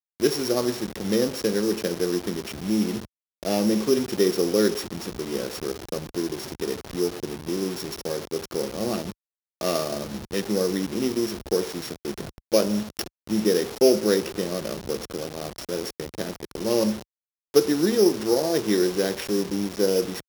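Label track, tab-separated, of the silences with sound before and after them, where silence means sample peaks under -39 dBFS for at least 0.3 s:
3.050000	3.430000	silence
9.120000	9.610000	silence
17.020000	17.540000	silence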